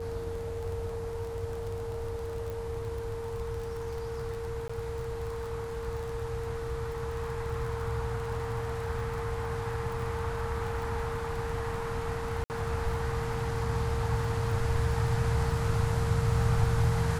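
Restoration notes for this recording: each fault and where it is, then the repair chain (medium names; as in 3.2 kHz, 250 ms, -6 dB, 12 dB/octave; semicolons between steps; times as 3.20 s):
crackle 26 per s -36 dBFS
whine 460 Hz -35 dBFS
2.50 s: pop
4.68–4.70 s: dropout 15 ms
12.44–12.50 s: dropout 59 ms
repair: de-click; band-stop 460 Hz, Q 30; interpolate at 4.68 s, 15 ms; interpolate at 12.44 s, 59 ms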